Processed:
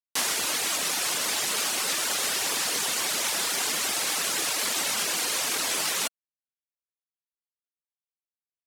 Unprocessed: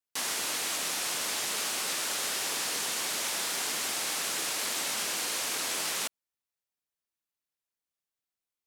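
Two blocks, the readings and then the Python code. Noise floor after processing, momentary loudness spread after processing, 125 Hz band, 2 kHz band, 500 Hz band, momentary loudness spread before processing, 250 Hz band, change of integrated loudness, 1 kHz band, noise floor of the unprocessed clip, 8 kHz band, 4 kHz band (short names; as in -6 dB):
under -85 dBFS, 0 LU, +5.0 dB, +4.5 dB, +4.5 dB, 0 LU, +4.5 dB, +4.5 dB, +4.5 dB, under -85 dBFS, +4.5 dB, +4.5 dB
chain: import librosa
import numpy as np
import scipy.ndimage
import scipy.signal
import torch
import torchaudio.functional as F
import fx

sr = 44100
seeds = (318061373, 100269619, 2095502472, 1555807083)

y = np.sign(x) * np.maximum(np.abs(x) - 10.0 ** (-51.5 / 20.0), 0.0)
y = fx.dereverb_blind(y, sr, rt60_s=0.72)
y = F.gain(torch.from_numpy(y), 7.5).numpy()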